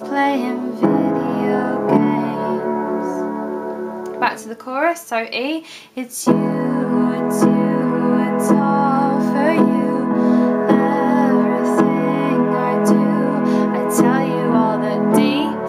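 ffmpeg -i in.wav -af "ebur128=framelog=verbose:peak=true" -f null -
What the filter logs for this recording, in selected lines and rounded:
Integrated loudness:
  I:         -17.3 LUFS
  Threshold: -27.4 LUFS
Loudness range:
  LRA:         6.0 LU
  Threshold: -37.5 LUFS
  LRA low:   -21.8 LUFS
  LRA high:  -15.8 LUFS
True peak:
  Peak:       -1.8 dBFS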